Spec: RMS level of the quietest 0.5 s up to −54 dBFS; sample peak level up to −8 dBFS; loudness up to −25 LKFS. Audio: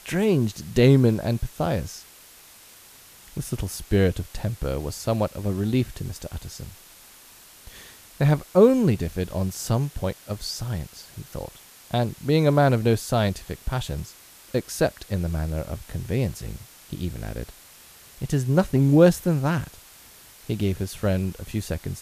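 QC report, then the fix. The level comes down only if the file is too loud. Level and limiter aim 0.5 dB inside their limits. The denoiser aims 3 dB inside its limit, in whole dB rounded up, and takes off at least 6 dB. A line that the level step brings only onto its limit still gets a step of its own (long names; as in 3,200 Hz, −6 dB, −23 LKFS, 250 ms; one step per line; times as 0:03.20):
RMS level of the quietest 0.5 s −49 dBFS: out of spec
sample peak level −3.5 dBFS: out of spec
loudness −24.0 LKFS: out of spec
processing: broadband denoise 7 dB, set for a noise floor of −49 dBFS
level −1.5 dB
brickwall limiter −8.5 dBFS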